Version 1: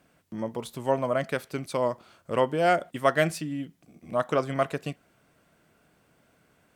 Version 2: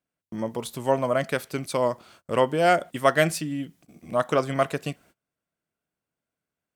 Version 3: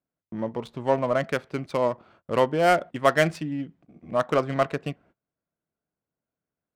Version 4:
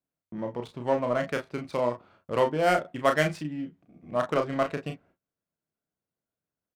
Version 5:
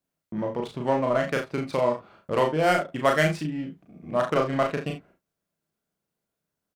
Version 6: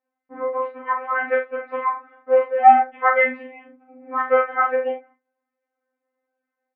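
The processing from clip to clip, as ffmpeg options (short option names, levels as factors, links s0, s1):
-af "highshelf=f=4200:g=5,agate=range=0.0447:threshold=0.00178:ratio=16:detection=peak,volume=1.33"
-af "adynamicsmooth=sensitivity=3.5:basefreq=1700"
-af "aecho=1:1:33|44:0.501|0.211,volume=0.631"
-filter_complex "[0:a]asplit=2[s0][s1];[s1]acompressor=threshold=0.0224:ratio=6,volume=0.841[s2];[s0][s2]amix=inputs=2:normalize=0,asplit=2[s3][s4];[s4]adelay=38,volume=0.562[s5];[s3][s5]amix=inputs=2:normalize=0"
-af "highpass=f=250:t=q:w=0.5412,highpass=f=250:t=q:w=1.307,lowpass=f=2000:t=q:w=0.5176,lowpass=f=2000:t=q:w=0.7071,lowpass=f=2000:t=q:w=1.932,afreqshift=69,aemphasis=mode=production:type=50fm,afftfilt=real='re*3.46*eq(mod(b,12),0)':imag='im*3.46*eq(mod(b,12),0)':win_size=2048:overlap=0.75,volume=2.66"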